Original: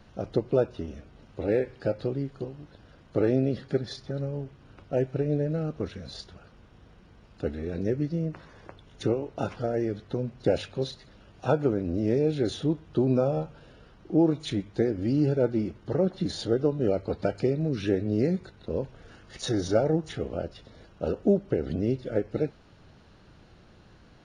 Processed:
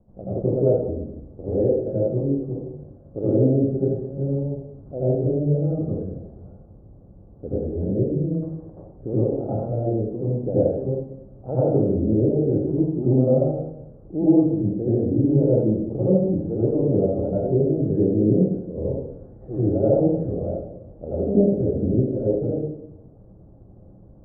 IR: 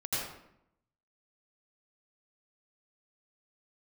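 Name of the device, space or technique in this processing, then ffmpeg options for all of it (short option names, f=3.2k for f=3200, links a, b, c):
next room: -filter_complex "[0:a]lowpass=f=660:w=0.5412,lowpass=f=660:w=1.3066[a];[1:a]atrim=start_sample=2205[b];[a][b]afir=irnorm=-1:irlink=0"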